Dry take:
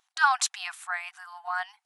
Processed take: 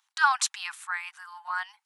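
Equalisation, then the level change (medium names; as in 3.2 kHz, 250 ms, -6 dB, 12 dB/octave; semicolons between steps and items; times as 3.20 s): steep high-pass 800 Hz 96 dB/octave; 0.0 dB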